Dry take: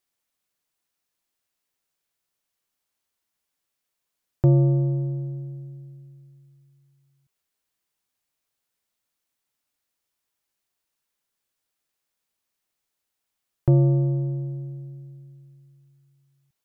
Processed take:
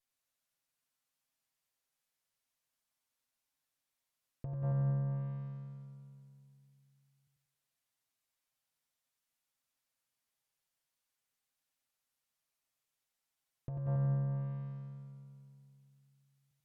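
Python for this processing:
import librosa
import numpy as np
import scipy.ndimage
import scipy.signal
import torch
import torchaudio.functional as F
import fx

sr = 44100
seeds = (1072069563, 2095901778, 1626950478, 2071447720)

y = fx.lower_of_two(x, sr, delay_ms=7.5)
y = fx.peak_eq(y, sr, hz=360.0, db=-8.5, octaves=0.42)
y = fx.env_lowpass_down(y, sr, base_hz=920.0, full_db=-23.0)
y = fx.echo_feedback(y, sr, ms=92, feedback_pct=47, wet_db=-4.0)
y = fx.over_compress(y, sr, threshold_db=-25.0, ratio=-1.0)
y = y * 10.0 ** (-8.5 / 20.0)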